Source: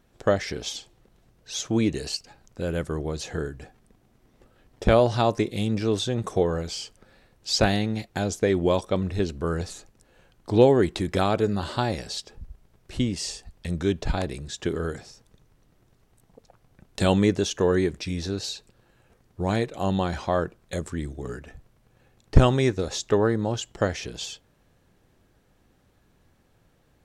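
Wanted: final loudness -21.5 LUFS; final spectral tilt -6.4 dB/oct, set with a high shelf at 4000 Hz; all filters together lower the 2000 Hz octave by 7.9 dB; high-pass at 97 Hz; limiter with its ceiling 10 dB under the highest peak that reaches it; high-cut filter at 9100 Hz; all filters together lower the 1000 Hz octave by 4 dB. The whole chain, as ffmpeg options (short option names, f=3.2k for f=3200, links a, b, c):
-af "highpass=97,lowpass=9.1k,equalizer=f=1k:t=o:g=-3.5,equalizer=f=2k:t=o:g=-8,highshelf=f=4k:g=-6,volume=7.5dB,alimiter=limit=-6dB:level=0:latency=1"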